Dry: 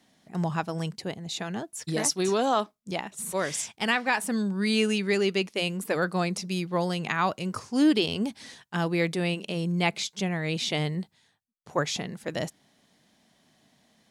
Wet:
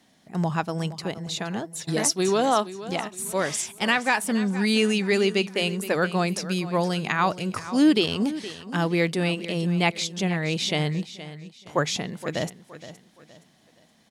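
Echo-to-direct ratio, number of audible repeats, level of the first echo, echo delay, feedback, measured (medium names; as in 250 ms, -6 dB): -14.0 dB, 3, -14.5 dB, 469 ms, 35%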